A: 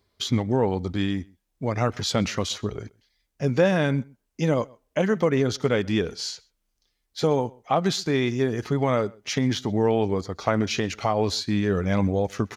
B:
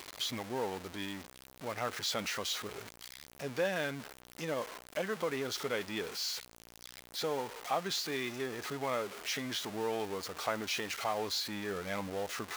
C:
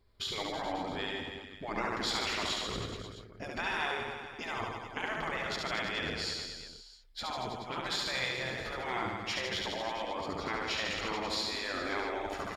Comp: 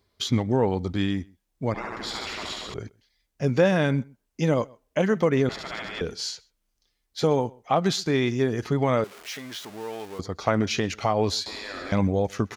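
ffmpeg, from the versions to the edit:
-filter_complex "[2:a]asplit=3[a][b][c];[0:a]asplit=5[d][e][f][g][h];[d]atrim=end=1.742[i];[a]atrim=start=1.738:end=2.742[j];[e]atrim=start=2.738:end=5.492[k];[b]atrim=start=5.488:end=6.012[l];[f]atrim=start=6.008:end=9.042[m];[1:a]atrim=start=9.038:end=10.192[n];[g]atrim=start=10.188:end=11.462[o];[c]atrim=start=11.458:end=11.922[p];[h]atrim=start=11.918[q];[i][j]acrossfade=d=0.004:c1=hsin:c2=hsin[r];[r][k]acrossfade=d=0.004:c1=hsin:c2=hsin[s];[s][l]acrossfade=d=0.004:c1=hsin:c2=hsin[t];[t][m]acrossfade=d=0.004:c1=hsin:c2=hsin[u];[u][n]acrossfade=d=0.004:c1=hsin:c2=hsin[v];[v][o]acrossfade=d=0.004:c1=hsin:c2=hsin[w];[w][p]acrossfade=d=0.004:c1=hsin:c2=hsin[x];[x][q]acrossfade=d=0.004:c1=hsin:c2=hsin"

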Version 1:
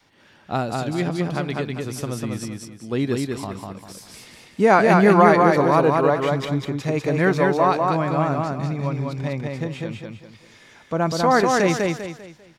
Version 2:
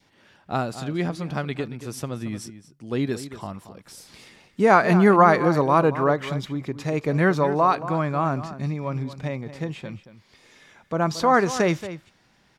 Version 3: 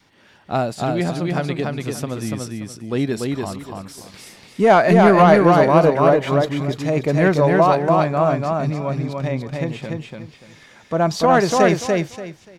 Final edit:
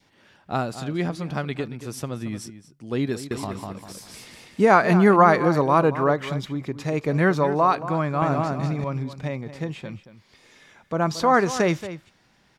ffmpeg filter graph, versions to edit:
-filter_complex "[0:a]asplit=2[a][b];[1:a]asplit=3[c][d][e];[c]atrim=end=3.312[f];[a]atrim=start=3.308:end=4.652[g];[d]atrim=start=4.648:end=8.222[h];[b]atrim=start=8.218:end=8.842[i];[e]atrim=start=8.838[j];[f][g]acrossfade=d=0.004:c1=hsin:c2=hsin[k];[k][h]acrossfade=d=0.004:c1=hsin:c2=hsin[l];[l][i]acrossfade=d=0.004:c1=hsin:c2=hsin[m];[m][j]acrossfade=d=0.004:c1=hsin:c2=hsin"

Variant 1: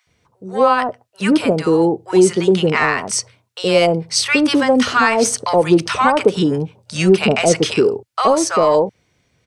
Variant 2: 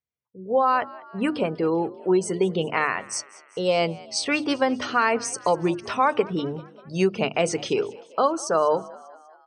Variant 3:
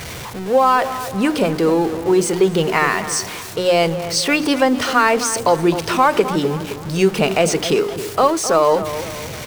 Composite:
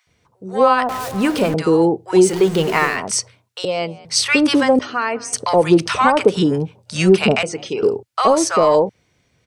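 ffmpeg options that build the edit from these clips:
-filter_complex "[2:a]asplit=2[a][b];[1:a]asplit=3[c][d][e];[0:a]asplit=6[f][g][h][i][j][k];[f]atrim=end=0.892[l];[a]atrim=start=0.888:end=1.542[m];[g]atrim=start=1.538:end=2.37[n];[b]atrim=start=2.21:end=3[o];[h]atrim=start=2.84:end=3.652[p];[c]atrim=start=3.648:end=4.052[q];[i]atrim=start=4.048:end=4.792[r];[d]atrim=start=4.788:end=5.332[s];[j]atrim=start=5.328:end=7.432[t];[e]atrim=start=7.428:end=7.832[u];[k]atrim=start=7.828[v];[l][m]acrossfade=d=0.004:c1=hsin:c2=hsin[w];[w][n]acrossfade=d=0.004:c1=hsin:c2=hsin[x];[x][o]acrossfade=d=0.16:c1=tri:c2=tri[y];[y][p]acrossfade=d=0.16:c1=tri:c2=tri[z];[z][q]acrossfade=d=0.004:c1=hsin:c2=hsin[aa];[aa][r]acrossfade=d=0.004:c1=hsin:c2=hsin[ab];[ab][s]acrossfade=d=0.004:c1=hsin:c2=hsin[ac];[ac][t]acrossfade=d=0.004:c1=hsin:c2=hsin[ad];[ad][u]acrossfade=d=0.004:c1=hsin:c2=hsin[ae];[ae][v]acrossfade=d=0.004:c1=hsin:c2=hsin"

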